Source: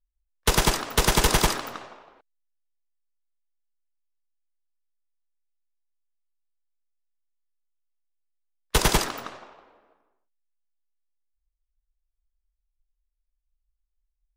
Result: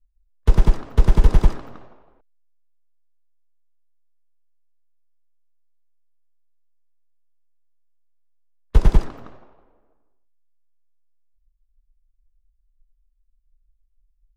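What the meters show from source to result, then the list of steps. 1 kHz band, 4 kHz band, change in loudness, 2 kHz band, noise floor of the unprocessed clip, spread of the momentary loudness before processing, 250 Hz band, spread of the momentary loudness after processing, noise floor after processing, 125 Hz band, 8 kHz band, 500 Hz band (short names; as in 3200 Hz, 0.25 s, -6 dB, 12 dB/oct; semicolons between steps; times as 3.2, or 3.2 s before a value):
-7.5 dB, -16.5 dB, +2.0 dB, -12.0 dB, -80 dBFS, 17 LU, +2.0 dB, 7 LU, -65 dBFS, +8.5 dB, -21.0 dB, -3.0 dB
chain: tilt -4.5 dB/oct; gain -8 dB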